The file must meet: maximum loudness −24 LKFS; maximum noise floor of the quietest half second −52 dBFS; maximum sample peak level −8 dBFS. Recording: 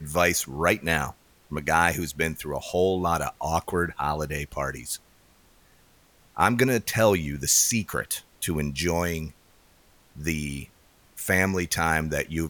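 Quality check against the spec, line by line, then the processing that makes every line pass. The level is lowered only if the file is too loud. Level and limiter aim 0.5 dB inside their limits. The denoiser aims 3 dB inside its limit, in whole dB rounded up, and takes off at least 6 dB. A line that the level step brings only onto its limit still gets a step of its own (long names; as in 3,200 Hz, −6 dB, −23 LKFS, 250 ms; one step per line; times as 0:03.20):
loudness −25.5 LKFS: in spec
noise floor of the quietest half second −59 dBFS: in spec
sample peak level −6.0 dBFS: out of spec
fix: brickwall limiter −8.5 dBFS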